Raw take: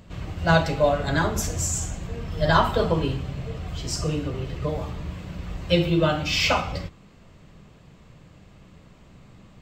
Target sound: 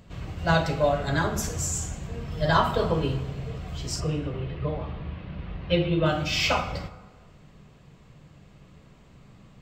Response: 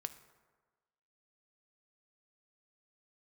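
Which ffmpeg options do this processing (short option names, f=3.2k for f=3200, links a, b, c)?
-filter_complex "[0:a]asettb=1/sr,asplit=3[a][b][c];[a]atrim=end=4.004[d];[b]atrim=start=4:end=6.06,asetpts=PTS-STARTPTS,afade=t=in:d=0.004:c=qsin,afade=t=out:st=2.056:d=0.004:c=qsin,lowpass=f=3.6k:w=0.5412,lowpass=f=3.6k:w=1.3066[e];[c]atrim=start=6.056[f];[d][e]acrossfade=d=0.004:c1=hsin:c2=qsin[g];[g][f]acrossfade=d=0.004:c1=qsin:c2=hsin[h];[1:a]atrim=start_sample=2205[i];[h][i]afir=irnorm=-1:irlink=0"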